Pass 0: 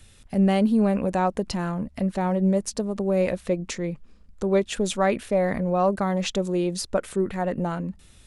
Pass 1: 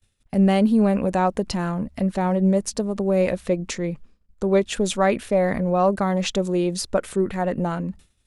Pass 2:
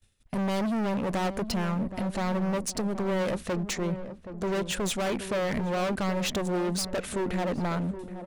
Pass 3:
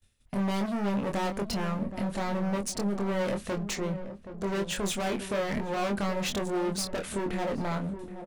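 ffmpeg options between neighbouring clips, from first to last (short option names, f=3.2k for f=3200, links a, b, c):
-af "agate=range=-33dB:threshold=-38dB:ratio=3:detection=peak,volume=2.5dB"
-filter_complex "[0:a]volume=26.5dB,asoftclip=hard,volume=-26.5dB,asplit=2[a][b];[b]adelay=774,lowpass=f=930:p=1,volume=-10dB,asplit=2[c][d];[d]adelay=774,lowpass=f=930:p=1,volume=0.47,asplit=2[e][f];[f]adelay=774,lowpass=f=930:p=1,volume=0.47,asplit=2[g][h];[h]adelay=774,lowpass=f=930:p=1,volume=0.47,asplit=2[i][j];[j]adelay=774,lowpass=f=930:p=1,volume=0.47[k];[a][c][e][g][i][k]amix=inputs=6:normalize=0"
-filter_complex "[0:a]asplit=2[a][b];[b]adelay=25,volume=-5dB[c];[a][c]amix=inputs=2:normalize=0,volume=-2.5dB"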